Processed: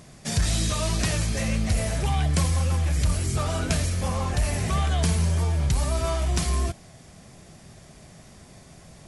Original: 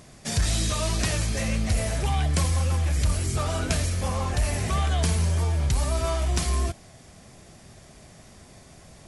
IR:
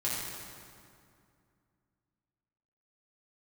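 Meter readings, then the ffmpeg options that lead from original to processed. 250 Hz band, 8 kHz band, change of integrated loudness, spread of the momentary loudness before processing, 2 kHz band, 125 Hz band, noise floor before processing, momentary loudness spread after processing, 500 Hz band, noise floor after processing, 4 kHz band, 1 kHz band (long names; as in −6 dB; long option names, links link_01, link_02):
+2.0 dB, 0.0 dB, +0.5 dB, 3 LU, 0.0 dB, +0.5 dB, −50 dBFS, 3 LU, 0.0 dB, −49 dBFS, 0.0 dB, 0.0 dB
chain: -af "equalizer=frequency=160:width=2.3:gain=4"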